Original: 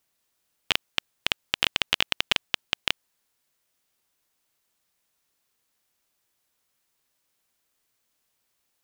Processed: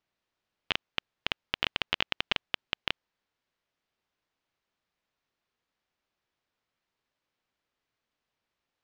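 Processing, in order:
high-frequency loss of the air 190 metres
level −2.5 dB

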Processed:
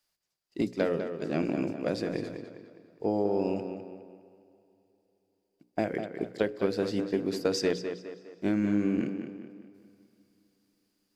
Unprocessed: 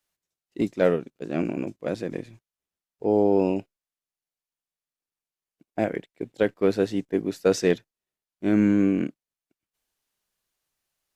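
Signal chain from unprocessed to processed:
parametric band 4,800 Hz +12 dB 0.2 octaves
mains-hum notches 60/120/180/240/300/360/420/480/540 Hz
downward compressor, threshold −24 dBFS, peak gain reduction 8.5 dB
tape delay 204 ms, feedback 48%, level −6.5 dB, low-pass 3,600 Hz
on a send at −22.5 dB: convolution reverb RT60 4.0 s, pre-delay 77 ms

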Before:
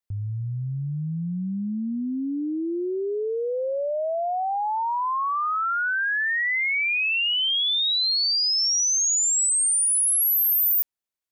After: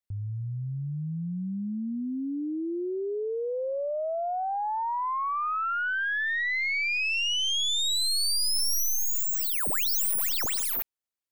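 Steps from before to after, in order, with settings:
stylus tracing distortion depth 0.08 ms
level −4 dB

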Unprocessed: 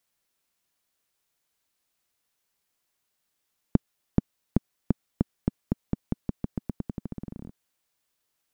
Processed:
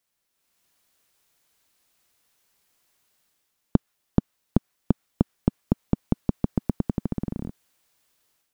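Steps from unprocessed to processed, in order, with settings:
dynamic equaliser 1,300 Hz, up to +4 dB, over −48 dBFS, Q 0.72
automatic gain control gain up to 10 dB
level −1 dB

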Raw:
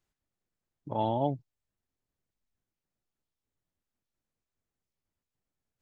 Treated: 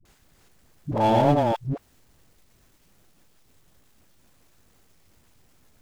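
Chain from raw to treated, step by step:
delay that plays each chunk backwards 216 ms, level −2.5 dB
power curve on the samples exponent 0.7
all-pass dispersion highs, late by 53 ms, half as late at 350 Hz
level +6 dB

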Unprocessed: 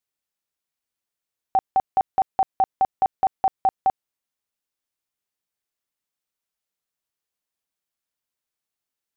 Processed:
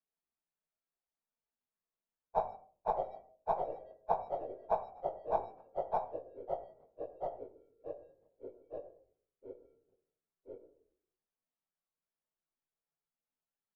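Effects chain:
reversed piece by piece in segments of 138 ms
noise gate with hold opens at −14 dBFS
low-pass filter 1,500 Hz 12 dB per octave
in parallel at −11 dB: soft clipping −26.5 dBFS, distortion −10 dB
on the sum: gate with flip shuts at −33 dBFS, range −41 dB
time stretch by phase vocoder 1.5×
on a send at −4.5 dB: convolution reverb RT60 0.45 s, pre-delay 4 ms
on the sum: delay with pitch and tempo change per echo 168 ms, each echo −3 semitones, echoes 3, each echo −6 dB
double-tracking delay 19 ms −8 dB
level +13.5 dB

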